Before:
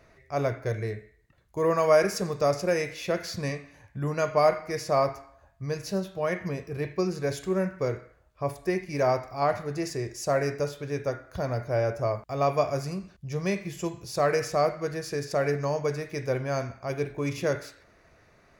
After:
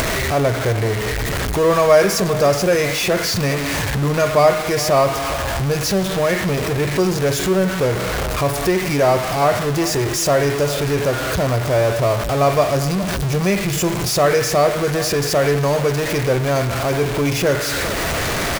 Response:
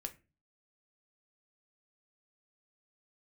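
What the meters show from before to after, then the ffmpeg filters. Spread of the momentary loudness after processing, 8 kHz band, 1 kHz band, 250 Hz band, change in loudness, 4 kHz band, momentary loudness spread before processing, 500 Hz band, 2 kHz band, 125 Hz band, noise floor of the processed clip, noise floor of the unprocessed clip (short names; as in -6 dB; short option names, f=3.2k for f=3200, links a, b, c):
5 LU, +17.5 dB, +10.0 dB, +11.5 dB, +10.5 dB, +17.5 dB, 10 LU, +10.0 dB, +13.5 dB, +12.5 dB, -22 dBFS, -61 dBFS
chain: -filter_complex "[0:a]aeval=exprs='val(0)+0.5*0.0562*sgn(val(0))':c=same,asplit=2[a][b];[b]adelay=408.2,volume=-15dB,highshelf=f=4k:g=-9.18[c];[a][c]amix=inputs=2:normalize=0,acompressor=mode=upward:threshold=-24dB:ratio=2.5,volume=6.5dB"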